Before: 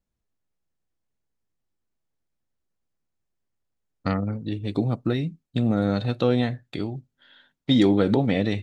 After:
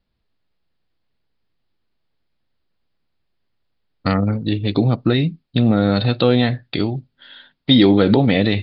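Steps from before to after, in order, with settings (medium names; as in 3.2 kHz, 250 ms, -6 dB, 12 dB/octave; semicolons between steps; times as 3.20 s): steep low-pass 4.9 kHz 96 dB/octave; treble shelf 3 kHz +8 dB; in parallel at +0.5 dB: peak limiter -16.5 dBFS, peak gain reduction 10 dB; on the sum: trim +2.5 dB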